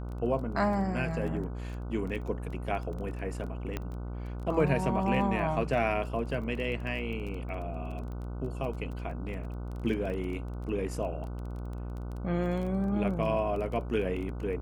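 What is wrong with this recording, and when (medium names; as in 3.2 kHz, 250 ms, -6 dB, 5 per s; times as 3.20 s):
buzz 60 Hz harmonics 25 -37 dBFS
crackle 15 per s -37 dBFS
3.77 s: pop -19 dBFS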